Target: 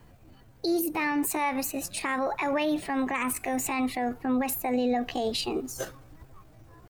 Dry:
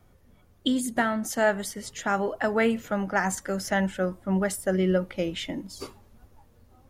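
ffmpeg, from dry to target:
-af "alimiter=limit=-23.5dB:level=0:latency=1:release=75,asetrate=58866,aresample=44100,atempo=0.749154,volume=4.5dB"

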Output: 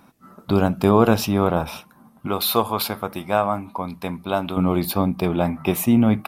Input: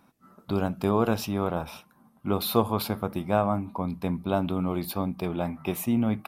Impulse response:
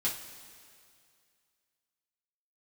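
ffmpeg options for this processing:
-filter_complex "[0:a]asettb=1/sr,asplit=3[a][b][c];[a]atrim=end=2.274[d];[b]atrim=start=2.27:end=4.57,asetpts=PTS-STARTPTS,afade=t=in:d=0.004:c=qsin,afade=t=out:st=2.296:d=0.004:c=qsin,lowshelf=f=480:g=-11.5[e];[c]atrim=start=4.566[f];[d][e]acrossfade=d=0.004:c1=hsin:c2=qsin[g];[g][f]acrossfade=d=0.004:c1=qsin:c2=hsin,volume=8.5dB"

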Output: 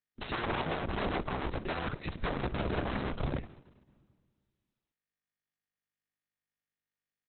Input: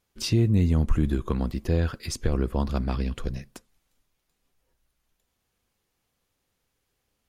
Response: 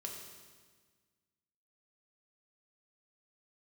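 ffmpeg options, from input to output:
-filter_complex "[0:a]agate=range=-42dB:threshold=-40dB:ratio=16:detection=peak,aeval=exprs='(mod(22.4*val(0)+1,2)-1)/22.4':c=same,acompressor=threshold=-35dB:ratio=12,equalizer=f=4.3k:w=0.37:g=-9,acontrast=69,asplit=2[a][b];[b]adelay=230,highpass=300,lowpass=3.4k,asoftclip=type=hard:threshold=-28dB,volume=-26dB[c];[a][c]amix=inputs=2:normalize=0,asplit=2[d][e];[1:a]atrim=start_sample=2205[f];[e][f]afir=irnorm=-1:irlink=0,volume=-10.5dB[g];[d][g]amix=inputs=2:normalize=0" -ar 48000 -c:a libopus -b:a 6k

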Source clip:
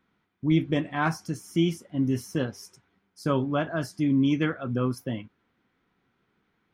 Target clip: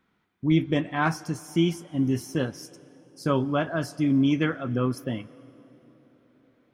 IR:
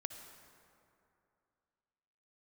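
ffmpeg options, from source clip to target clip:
-filter_complex "[0:a]asplit=2[a][b];[1:a]atrim=start_sample=2205,asetrate=22491,aresample=44100,lowshelf=f=210:g=-8.5[c];[b][c]afir=irnorm=-1:irlink=0,volume=-14dB[d];[a][d]amix=inputs=2:normalize=0"

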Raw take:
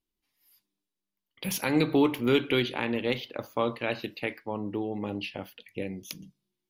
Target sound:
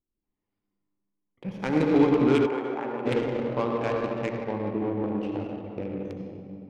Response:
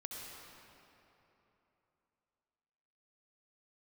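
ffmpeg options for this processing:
-filter_complex "[1:a]atrim=start_sample=2205[a];[0:a][a]afir=irnorm=-1:irlink=0,adynamicsmooth=sensitivity=2:basefreq=750,asplit=3[b][c][d];[b]afade=t=out:st=2.45:d=0.02[e];[c]bandpass=f=820:t=q:w=1.3:csg=0,afade=t=in:st=2.45:d=0.02,afade=t=out:st=3.05:d=0.02[f];[d]afade=t=in:st=3.05:d=0.02[g];[e][f][g]amix=inputs=3:normalize=0,volume=6dB"

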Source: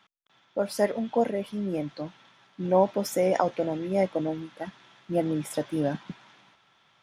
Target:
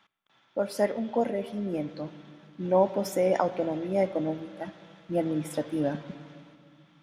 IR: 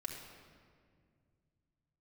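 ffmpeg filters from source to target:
-filter_complex "[0:a]asplit=2[a][b];[1:a]atrim=start_sample=2205,lowpass=4.3k[c];[b][c]afir=irnorm=-1:irlink=0,volume=-7.5dB[d];[a][d]amix=inputs=2:normalize=0,volume=-3.5dB"

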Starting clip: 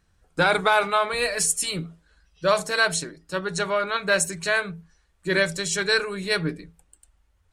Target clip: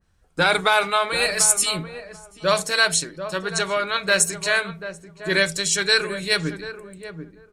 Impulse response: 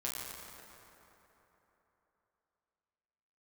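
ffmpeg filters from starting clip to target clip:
-filter_complex "[0:a]asplit=2[a][b];[b]adelay=738,lowpass=f=1k:p=1,volume=-9dB,asplit=2[c][d];[d]adelay=738,lowpass=f=1k:p=1,volume=0.19,asplit=2[e][f];[f]adelay=738,lowpass=f=1k:p=1,volume=0.19[g];[c][e][g]amix=inputs=3:normalize=0[h];[a][h]amix=inputs=2:normalize=0,adynamicequalizer=threshold=0.0178:dfrequency=1900:dqfactor=0.7:tfrequency=1900:tqfactor=0.7:attack=5:release=100:ratio=0.375:range=3:mode=boostabove:tftype=highshelf"

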